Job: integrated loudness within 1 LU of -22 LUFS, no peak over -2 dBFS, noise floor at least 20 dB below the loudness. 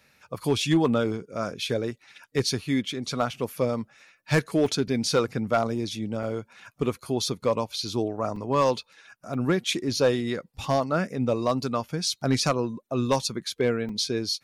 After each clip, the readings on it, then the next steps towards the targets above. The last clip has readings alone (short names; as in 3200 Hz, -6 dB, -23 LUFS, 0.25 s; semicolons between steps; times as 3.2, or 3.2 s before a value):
clipped 0.3%; flat tops at -14.0 dBFS; dropouts 5; longest dropout 3.3 ms; loudness -27.0 LUFS; peak -14.0 dBFS; loudness target -22.0 LUFS
-> clip repair -14 dBFS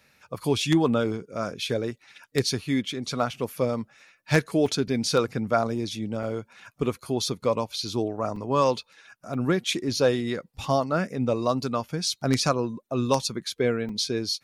clipped 0.0%; dropouts 5; longest dropout 3.3 ms
-> interpolate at 4.66/6.23/8.36/9.34/13.89, 3.3 ms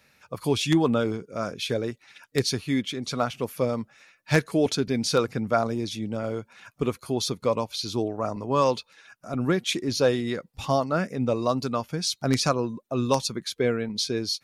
dropouts 0; loudness -26.5 LUFS; peak -5.0 dBFS; loudness target -22.0 LUFS
-> gain +4.5 dB; limiter -2 dBFS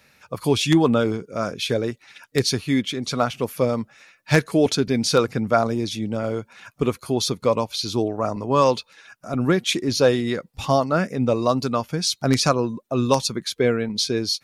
loudness -22.0 LUFS; peak -2.0 dBFS; noise floor -62 dBFS